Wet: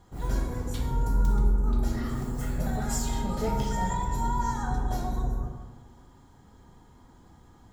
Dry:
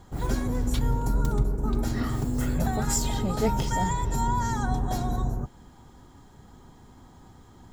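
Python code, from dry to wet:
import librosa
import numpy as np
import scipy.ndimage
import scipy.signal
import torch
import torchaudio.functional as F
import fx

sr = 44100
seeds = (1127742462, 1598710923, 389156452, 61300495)

y = fx.rev_plate(x, sr, seeds[0], rt60_s=1.3, hf_ratio=0.5, predelay_ms=0, drr_db=-0.5)
y = F.gain(torch.from_numpy(y), -7.0).numpy()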